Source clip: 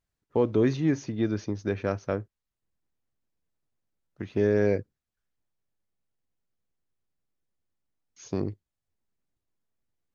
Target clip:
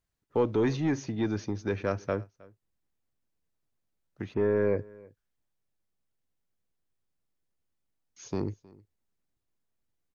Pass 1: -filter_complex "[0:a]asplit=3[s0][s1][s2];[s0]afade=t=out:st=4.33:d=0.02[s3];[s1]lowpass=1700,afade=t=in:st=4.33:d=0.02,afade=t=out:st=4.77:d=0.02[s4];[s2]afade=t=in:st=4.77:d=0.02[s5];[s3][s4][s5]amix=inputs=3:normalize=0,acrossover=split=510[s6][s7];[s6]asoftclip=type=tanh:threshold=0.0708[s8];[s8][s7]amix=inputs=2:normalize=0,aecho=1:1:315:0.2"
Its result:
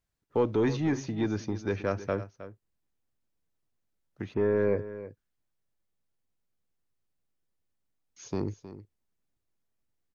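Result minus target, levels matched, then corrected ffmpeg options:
echo-to-direct +9.5 dB
-filter_complex "[0:a]asplit=3[s0][s1][s2];[s0]afade=t=out:st=4.33:d=0.02[s3];[s1]lowpass=1700,afade=t=in:st=4.33:d=0.02,afade=t=out:st=4.77:d=0.02[s4];[s2]afade=t=in:st=4.77:d=0.02[s5];[s3][s4][s5]amix=inputs=3:normalize=0,acrossover=split=510[s6][s7];[s6]asoftclip=type=tanh:threshold=0.0708[s8];[s8][s7]amix=inputs=2:normalize=0,aecho=1:1:315:0.0668"

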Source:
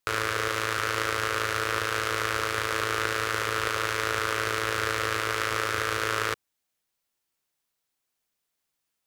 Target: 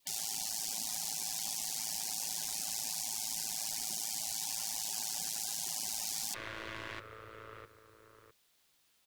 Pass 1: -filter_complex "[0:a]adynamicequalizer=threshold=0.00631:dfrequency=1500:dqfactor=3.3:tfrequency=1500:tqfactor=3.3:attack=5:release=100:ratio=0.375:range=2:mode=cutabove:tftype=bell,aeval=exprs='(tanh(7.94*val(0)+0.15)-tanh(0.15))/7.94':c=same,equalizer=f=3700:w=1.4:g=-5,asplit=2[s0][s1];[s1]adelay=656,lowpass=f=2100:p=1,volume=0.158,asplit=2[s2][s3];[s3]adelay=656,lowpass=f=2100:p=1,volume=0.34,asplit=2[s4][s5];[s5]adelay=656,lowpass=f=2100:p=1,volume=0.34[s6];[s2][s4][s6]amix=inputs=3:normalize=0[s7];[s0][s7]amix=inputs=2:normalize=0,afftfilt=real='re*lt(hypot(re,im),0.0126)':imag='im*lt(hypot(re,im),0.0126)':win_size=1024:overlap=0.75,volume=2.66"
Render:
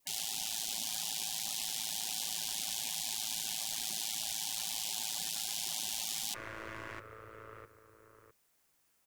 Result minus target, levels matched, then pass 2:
4 kHz band +3.0 dB
-filter_complex "[0:a]adynamicequalizer=threshold=0.00631:dfrequency=1500:dqfactor=3.3:tfrequency=1500:tqfactor=3.3:attack=5:release=100:ratio=0.375:range=2:mode=cutabove:tftype=bell,aeval=exprs='(tanh(7.94*val(0)+0.15)-tanh(0.15))/7.94':c=same,equalizer=f=3700:w=1.4:g=5,asplit=2[s0][s1];[s1]adelay=656,lowpass=f=2100:p=1,volume=0.158,asplit=2[s2][s3];[s3]adelay=656,lowpass=f=2100:p=1,volume=0.34,asplit=2[s4][s5];[s5]adelay=656,lowpass=f=2100:p=1,volume=0.34[s6];[s2][s4][s6]amix=inputs=3:normalize=0[s7];[s0][s7]amix=inputs=2:normalize=0,afftfilt=real='re*lt(hypot(re,im),0.0126)':imag='im*lt(hypot(re,im),0.0126)':win_size=1024:overlap=0.75,volume=2.66"

